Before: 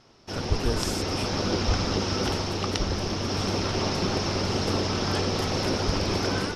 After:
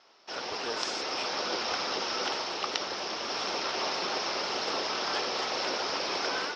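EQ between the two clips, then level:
high-pass filter 620 Hz 12 dB per octave
low-pass filter 5,600 Hz 24 dB per octave
0.0 dB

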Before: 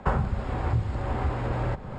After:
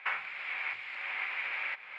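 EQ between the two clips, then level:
high-pass with resonance 2,300 Hz, resonance Q 6.5
low-pass filter 2,900 Hz 12 dB per octave
+2.5 dB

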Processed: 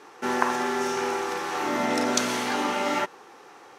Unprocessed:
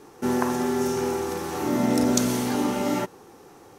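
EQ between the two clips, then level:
resonant band-pass 1,900 Hz, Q 0.67
+7.0 dB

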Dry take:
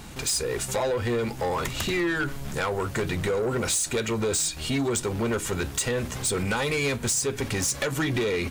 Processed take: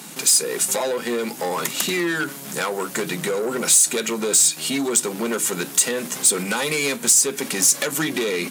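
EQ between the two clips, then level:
Chebyshev high-pass filter 160 Hz, order 5
parametric band 12,000 Hz +11.5 dB 1.6 octaves
+3.0 dB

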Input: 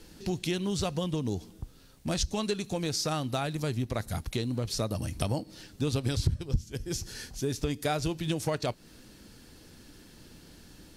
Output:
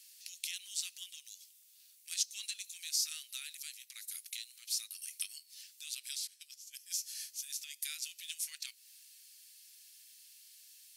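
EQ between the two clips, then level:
Butterworth high-pass 2,300 Hz 36 dB per octave
parametric band 3,100 Hz −13.5 dB 2.6 octaves
+8.5 dB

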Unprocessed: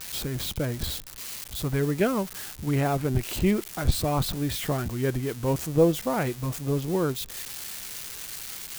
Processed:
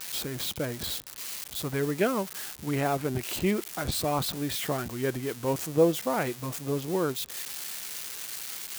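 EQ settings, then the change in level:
high-pass filter 270 Hz 6 dB per octave
0.0 dB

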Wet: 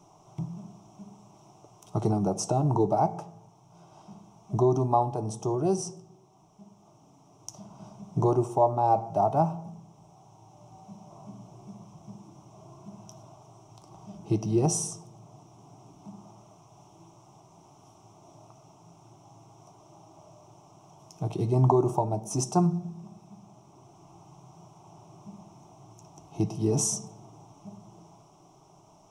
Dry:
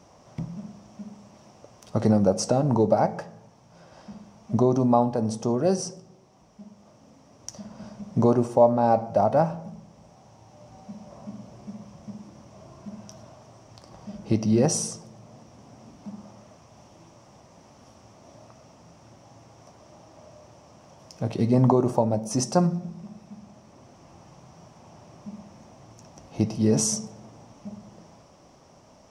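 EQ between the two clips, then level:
parametric band 4,600 Hz −13 dB 0.3 octaves
phaser with its sweep stopped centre 350 Hz, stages 8
0.0 dB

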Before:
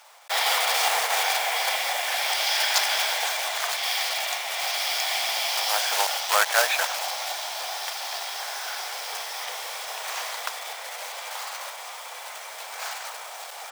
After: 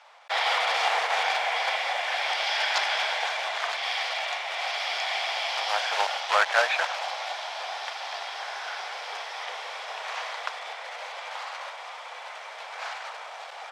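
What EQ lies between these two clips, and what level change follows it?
band-pass filter 290–3,400 Hz
0.0 dB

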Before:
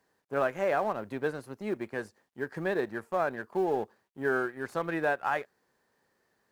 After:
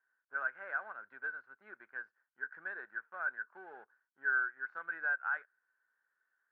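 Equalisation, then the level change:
resonant band-pass 1,500 Hz, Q 15
high-frequency loss of the air 190 metres
+7.5 dB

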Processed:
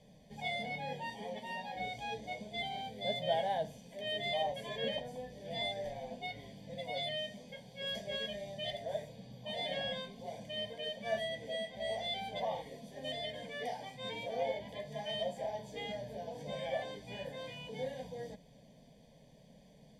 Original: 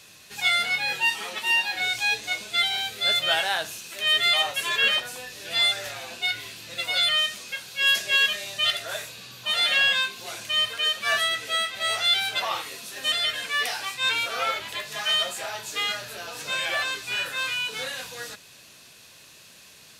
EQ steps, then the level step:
moving average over 33 samples
low-shelf EQ 130 Hz +9.5 dB
phaser with its sweep stopped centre 350 Hz, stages 6
+2.5 dB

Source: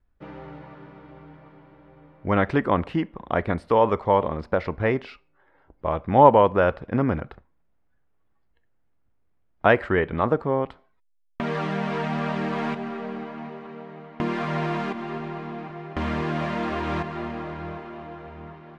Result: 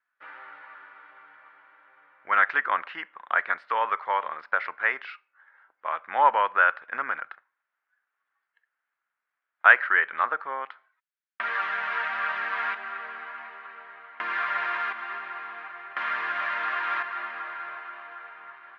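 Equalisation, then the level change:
high-pass with resonance 1,500 Hz, resonance Q 2.6
high-frequency loss of the air 150 metres
high-shelf EQ 4,400 Hz −8 dB
+2.5 dB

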